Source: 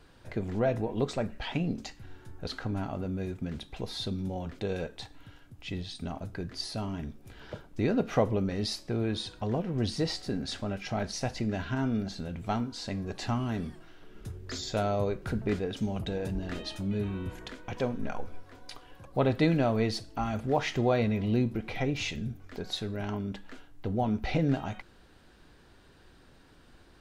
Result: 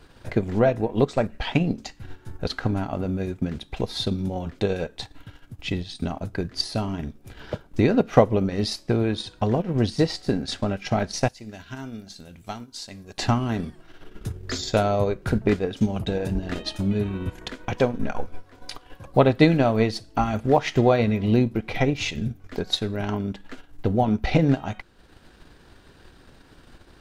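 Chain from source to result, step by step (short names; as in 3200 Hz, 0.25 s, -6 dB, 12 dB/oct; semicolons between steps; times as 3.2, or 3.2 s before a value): 11.28–13.18 pre-emphasis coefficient 0.8; transient shaper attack +5 dB, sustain -7 dB; gain +6.5 dB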